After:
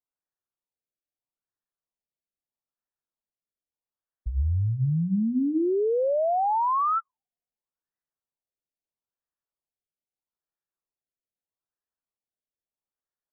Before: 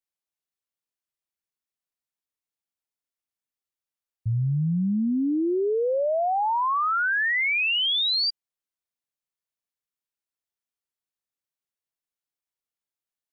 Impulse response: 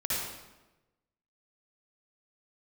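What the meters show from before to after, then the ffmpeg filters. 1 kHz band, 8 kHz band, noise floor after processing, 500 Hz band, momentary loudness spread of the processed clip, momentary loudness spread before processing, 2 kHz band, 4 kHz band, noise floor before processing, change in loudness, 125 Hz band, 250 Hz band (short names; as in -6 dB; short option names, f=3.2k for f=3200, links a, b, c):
-0.5 dB, n/a, under -85 dBFS, -0.5 dB, 6 LU, 5 LU, under -40 dB, under -40 dB, under -85 dBFS, -2.0 dB, 0.0 dB, -1.5 dB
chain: -af "afreqshift=-54,bandreject=f=60:t=h:w=6,bandreject=f=120:t=h:w=6,bandreject=f=180:t=h:w=6,bandreject=f=240:t=h:w=6,bandreject=f=300:t=h:w=6,afftfilt=real='re*lt(b*sr/1024,690*pow(2000/690,0.5+0.5*sin(2*PI*0.78*pts/sr)))':imag='im*lt(b*sr/1024,690*pow(2000/690,0.5+0.5*sin(2*PI*0.78*pts/sr)))':win_size=1024:overlap=0.75"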